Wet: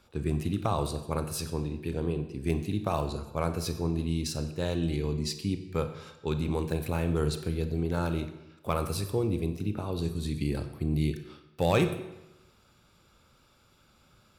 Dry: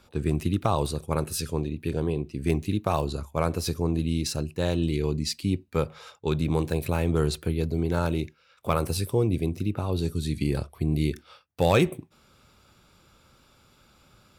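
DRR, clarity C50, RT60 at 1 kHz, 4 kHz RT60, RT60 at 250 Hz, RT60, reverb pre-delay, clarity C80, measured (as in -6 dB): 8.0 dB, 9.5 dB, 0.95 s, 0.85 s, 0.95 s, 0.95 s, 32 ms, 12.0 dB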